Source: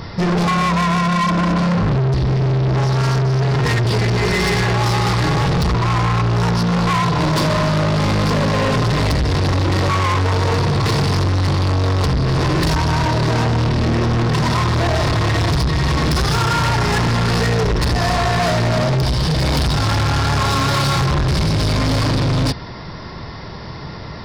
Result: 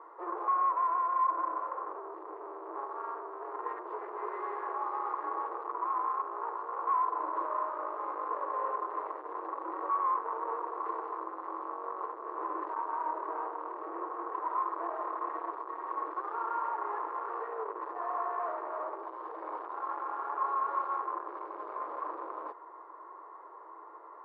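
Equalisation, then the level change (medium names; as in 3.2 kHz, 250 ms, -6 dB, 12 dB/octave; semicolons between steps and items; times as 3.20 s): rippled Chebyshev high-pass 320 Hz, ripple 3 dB; four-pole ladder low-pass 1.2 kHz, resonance 65%; -8.0 dB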